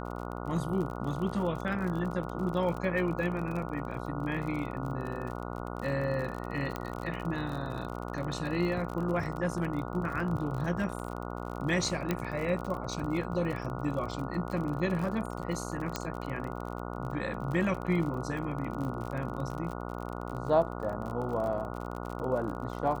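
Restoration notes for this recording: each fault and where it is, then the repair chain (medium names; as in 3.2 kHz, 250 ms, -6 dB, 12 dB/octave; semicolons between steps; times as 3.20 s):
buzz 60 Hz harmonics 24 -38 dBFS
crackle 43 per s -36 dBFS
6.76 s: pop -20 dBFS
12.11 s: pop -15 dBFS
15.96 s: pop -16 dBFS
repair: de-click; de-hum 60 Hz, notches 24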